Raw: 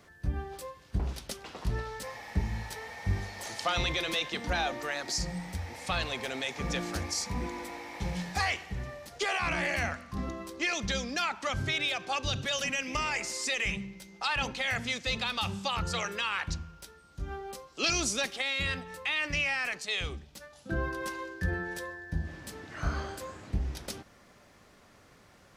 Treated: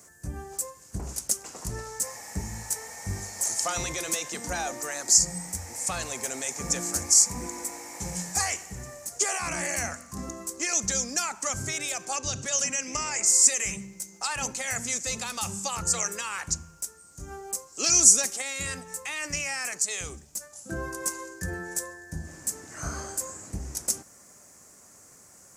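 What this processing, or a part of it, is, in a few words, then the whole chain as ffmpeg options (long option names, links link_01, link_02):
budget condenser microphone: -filter_complex "[0:a]highpass=frequency=93:poles=1,highshelf=frequency=5100:width_type=q:width=3:gain=13.5,asettb=1/sr,asplit=3[link_01][link_02][link_03];[link_01]atrim=end=12.164[link_04];[link_02]atrim=start=12.16:end=13.26,asetpts=PTS-STARTPTS,afade=type=in:duration=0.004:curve=qsin,afade=type=out:start_time=1.096:duration=0.004:curve=qsin,lowpass=6800[link_05];[link_03]atrim=start=13.256[link_06];[link_04][link_05]acrossfade=duration=0.004:curve1=hsin:curve2=qsin[link_07];[link_07][link_06]acrossfade=duration=0.004:curve1=qsin:curve2=hsin"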